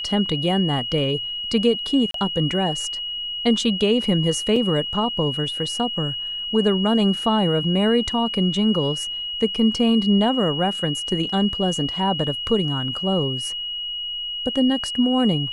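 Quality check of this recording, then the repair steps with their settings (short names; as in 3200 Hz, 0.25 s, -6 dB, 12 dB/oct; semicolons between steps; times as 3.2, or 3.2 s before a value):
tone 2900 Hz -26 dBFS
2.11–2.14 gap 33 ms
4.56 gap 3.7 ms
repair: notch 2900 Hz, Q 30; interpolate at 2.11, 33 ms; interpolate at 4.56, 3.7 ms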